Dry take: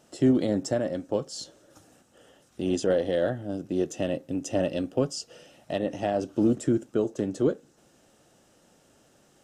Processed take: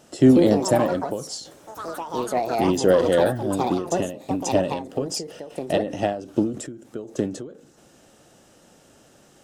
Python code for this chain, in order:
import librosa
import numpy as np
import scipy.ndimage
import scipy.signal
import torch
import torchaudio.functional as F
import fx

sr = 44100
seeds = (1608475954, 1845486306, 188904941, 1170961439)

y = fx.echo_pitch(x, sr, ms=194, semitones=5, count=3, db_per_echo=-6.0)
y = fx.end_taper(y, sr, db_per_s=100.0)
y = y * 10.0 ** (7.0 / 20.0)